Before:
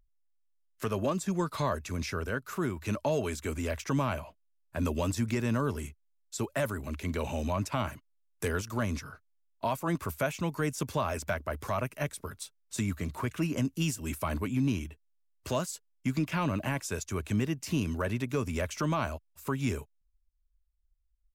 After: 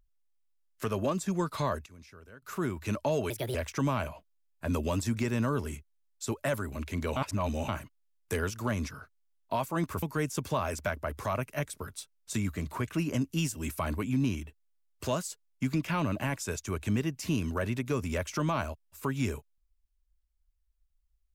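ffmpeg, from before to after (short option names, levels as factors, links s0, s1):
-filter_complex "[0:a]asplit=8[s0][s1][s2][s3][s4][s5][s6][s7];[s0]atrim=end=1.86,asetpts=PTS-STARTPTS,afade=t=out:st=1.48:d=0.38:c=log:silence=0.11885[s8];[s1]atrim=start=1.86:end=2.42,asetpts=PTS-STARTPTS,volume=0.119[s9];[s2]atrim=start=2.42:end=3.304,asetpts=PTS-STARTPTS,afade=t=in:d=0.38:c=log:silence=0.11885[s10];[s3]atrim=start=3.3:end=3.66,asetpts=PTS-STARTPTS,asetrate=64827,aresample=44100[s11];[s4]atrim=start=3.656:end=7.282[s12];[s5]atrim=start=7.278:end=7.802,asetpts=PTS-STARTPTS,areverse[s13];[s6]atrim=start=7.798:end=10.142[s14];[s7]atrim=start=10.458[s15];[s8][s9][s10]concat=n=3:v=0:a=1[s16];[s16][s11]acrossfade=d=0.004:c1=hsin:c2=hsin[s17];[s17][s12]acrossfade=d=0.004:c1=hsin:c2=hsin[s18];[s18][s13]acrossfade=d=0.004:c1=hsin:c2=hsin[s19];[s19][s14]acrossfade=d=0.004:c1=hsin:c2=hsin[s20];[s20][s15]acrossfade=d=0.004:c1=hsin:c2=hsin"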